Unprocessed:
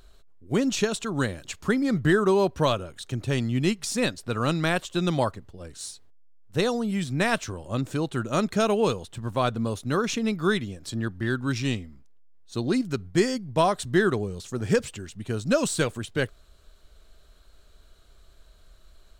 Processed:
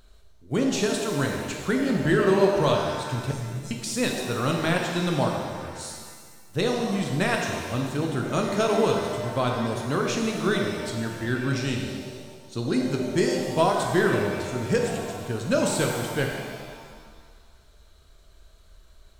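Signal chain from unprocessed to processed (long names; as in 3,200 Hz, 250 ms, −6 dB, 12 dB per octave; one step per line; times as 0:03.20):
0:03.31–0:03.71: inverse Chebyshev band-stop filter 260–2,500 Hz, stop band 50 dB
reverb with rising layers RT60 1.7 s, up +7 semitones, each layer −8 dB, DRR 1 dB
level −2 dB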